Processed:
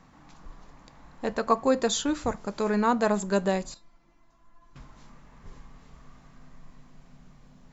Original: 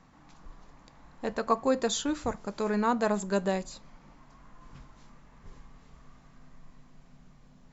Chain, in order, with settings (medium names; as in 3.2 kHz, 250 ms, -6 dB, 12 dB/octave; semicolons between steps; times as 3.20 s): 3.74–4.76 s: feedback comb 340 Hz, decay 0.16 s, harmonics all, mix 90%; trim +3 dB